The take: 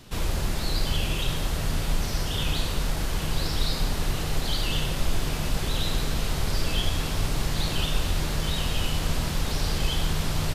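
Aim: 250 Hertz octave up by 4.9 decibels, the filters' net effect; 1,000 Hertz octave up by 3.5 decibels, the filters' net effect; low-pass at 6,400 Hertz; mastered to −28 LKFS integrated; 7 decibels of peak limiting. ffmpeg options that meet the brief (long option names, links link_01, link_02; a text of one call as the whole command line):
ffmpeg -i in.wav -af "lowpass=6400,equalizer=frequency=250:width_type=o:gain=7,equalizer=frequency=1000:width_type=o:gain=4,volume=1dB,alimiter=limit=-16.5dB:level=0:latency=1" out.wav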